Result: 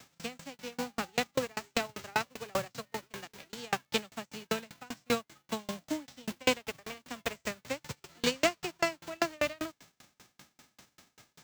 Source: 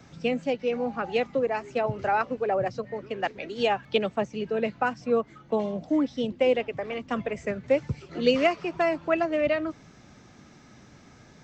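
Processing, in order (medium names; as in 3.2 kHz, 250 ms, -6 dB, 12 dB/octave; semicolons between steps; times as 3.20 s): formants flattened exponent 0.3; sawtooth tremolo in dB decaying 5.1 Hz, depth 36 dB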